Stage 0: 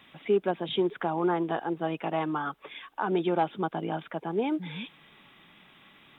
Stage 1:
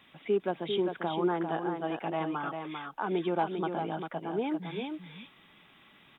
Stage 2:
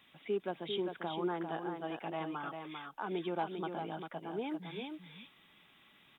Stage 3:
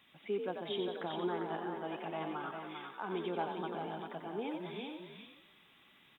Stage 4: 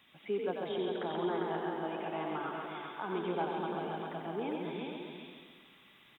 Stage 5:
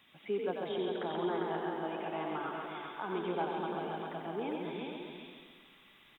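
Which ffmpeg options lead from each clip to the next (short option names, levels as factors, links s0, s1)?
-af "aecho=1:1:397:0.501,volume=0.668"
-af "highshelf=f=3500:g=8,volume=0.447"
-filter_complex "[0:a]asplit=7[s0][s1][s2][s3][s4][s5][s6];[s1]adelay=90,afreqshift=48,volume=0.473[s7];[s2]adelay=180,afreqshift=96,volume=0.237[s8];[s3]adelay=270,afreqshift=144,volume=0.119[s9];[s4]adelay=360,afreqshift=192,volume=0.0589[s10];[s5]adelay=450,afreqshift=240,volume=0.0295[s11];[s6]adelay=540,afreqshift=288,volume=0.0148[s12];[s0][s7][s8][s9][s10][s11][s12]amix=inputs=7:normalize=0,volume=0.841"
-filter_complex "[0:a]aecho=1:1:135|270|405|540|675|810|945:0.531|0.287|0.155|0.0836|0.0451|0.0244|0.0132,acrossover=split=2700[s0][s1];[s1]acompressor=threshold=0.00158:ratio=4:attack=1:release=60[s2];[s0][s2]amix=inputs=2:normalize=0,volume=1.19"
-af "asubboost=boost=3.5:cutoff=51"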